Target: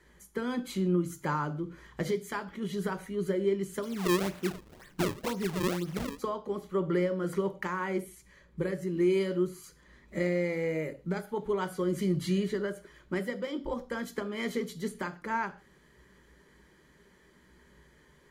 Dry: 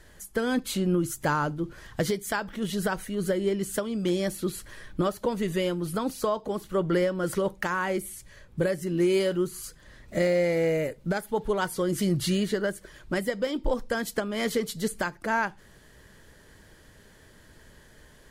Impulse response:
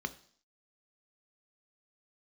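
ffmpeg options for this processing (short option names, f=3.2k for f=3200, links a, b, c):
-filter_complex "[1:a]atrim=start_sample=2205,afade=t=out:st=0.2:d=0.01,atrim=end_sample=9261[a];[0:a][a]afir=irnorm=-1:irlink=0,asplit=3[b][c][d];[b]afade=t=out:st=3.82:d=0.02[e];[c]acrusher=samples=35:mix=1:aa=0.000001:lfo=1:lforange=56:lforate=2,afade=t=in:st=3.82:d=0.02,afade=t=out:st=6.18:d=0.02[f];[d]afade=t=in:st=6.18:d=0.02[g];[e][f][g]amix=inputs=3:normalize=0,volume=-8dB"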